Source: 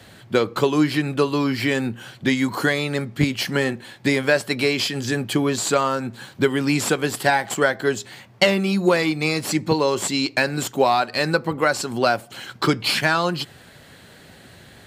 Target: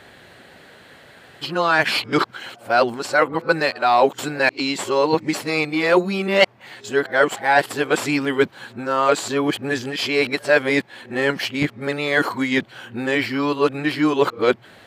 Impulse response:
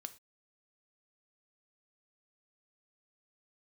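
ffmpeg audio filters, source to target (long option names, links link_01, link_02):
-af "areverse,bass=frequency=250:gain=-10,treble=frequency=4000:gain=-9,volume=3dB"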